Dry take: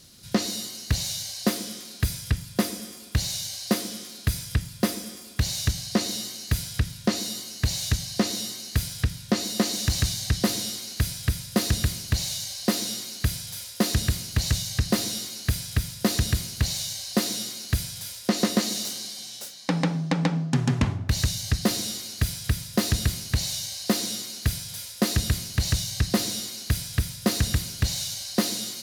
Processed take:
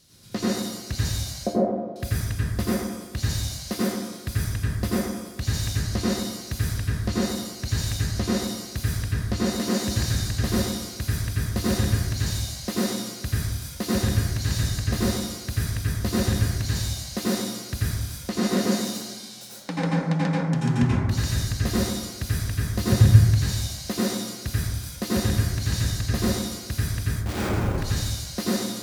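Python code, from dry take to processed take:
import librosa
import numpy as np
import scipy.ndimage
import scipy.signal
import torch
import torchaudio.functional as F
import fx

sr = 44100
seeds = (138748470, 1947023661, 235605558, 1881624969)

y = fx.lowpass_res(x, sr, hz=640.0, q=5.4, at=(1.43, 1.96))
y = fx.peak_eq(y, sr, hz=120.0, db=13.0, octaves=0.94, at=(22.8, 23.21))
y = fx.schmitt(y, sr, flips_db=-26.0, at=(27.11, 27.78))
y = fx.rev_plate(y, sr, seeds[0], rt60_s=1.1, hf_ratio=0.3, predelay_ms=75, drr_db=-7.5)
y = F.gain(torch.from_numpy(y), -7.5).numpy()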